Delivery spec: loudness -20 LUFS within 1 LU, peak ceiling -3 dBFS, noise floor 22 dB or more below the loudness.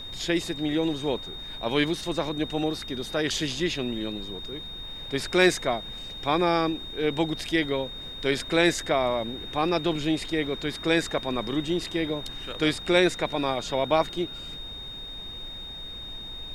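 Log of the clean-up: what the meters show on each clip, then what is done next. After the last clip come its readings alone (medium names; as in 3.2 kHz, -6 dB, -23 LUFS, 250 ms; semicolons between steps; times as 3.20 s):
steady tone 3.7 kHz; tone level -37 dBFS; noise floor -39 dBFS; noise floor target -50 dBFS; loudness -27.5 LUFS; peak level -7.0 dBFS; loudness target -20.0 LUFS
-> band-stop 3.7 kHz, Q 30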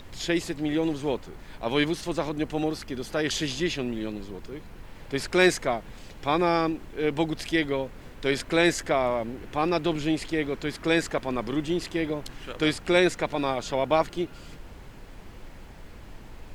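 steady tone not found; noise floor -45 dBFS; noise floor target -49 dBFS
-> noise print and reduce 6 dB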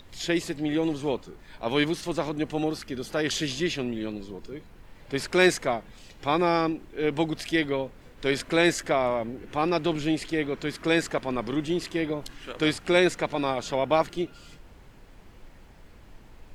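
noise floor -51 dBFS; loudness -27.0 LUFS; peak level -7.0 dBFS; loudness target -20.0 LUFS
-> trim +7 dB; peak limiter -3 dBFS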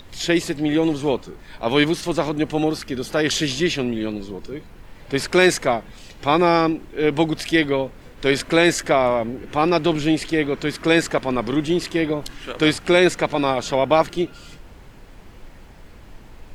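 loudness -20.5 LUFS; peak level -3.0 dBFS; noise floor -44 dBFS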